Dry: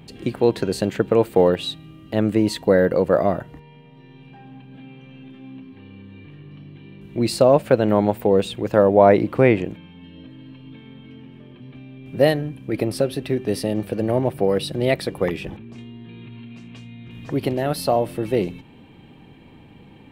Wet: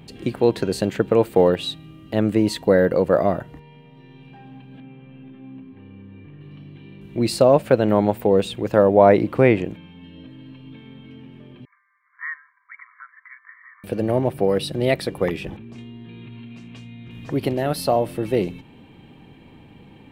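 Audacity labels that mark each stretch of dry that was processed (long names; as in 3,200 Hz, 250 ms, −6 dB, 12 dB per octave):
4.800000	6.410000	high-frequency loss of the air 400 metres
11.650000	13.840000	linear-phase brick-wall band-pass 970–2,300 Hz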